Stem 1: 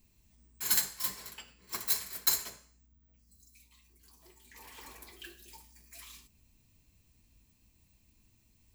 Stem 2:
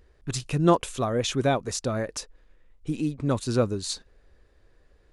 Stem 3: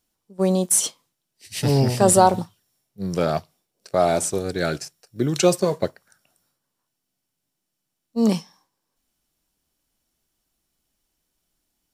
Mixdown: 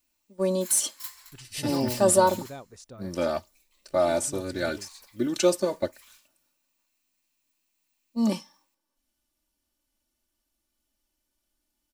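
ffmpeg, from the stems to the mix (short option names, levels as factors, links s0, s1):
-filter_complex "[0:a]highpass=f=870:w=0.5412,highpass=f=870:w=1.3066,volume=0.596[s0];[1:a]adelay=1050,volume=0.126[s1];[2:a]aecho=1:1:3.4:0.83,volume=0.447,asplit=2[s2][s3];[s3]apad=whole_len=385735[s4];[s0][s4]sidechaincompress=threshold=0.0355:ratio=8:attack=8.7:release=157[s5];[s5][s1][s2]amix=inputs=3:normalize=0"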